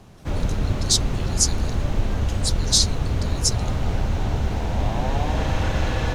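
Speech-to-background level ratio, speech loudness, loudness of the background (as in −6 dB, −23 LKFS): 3.0 dB, −22.5 LKFS, −25.5 LKFS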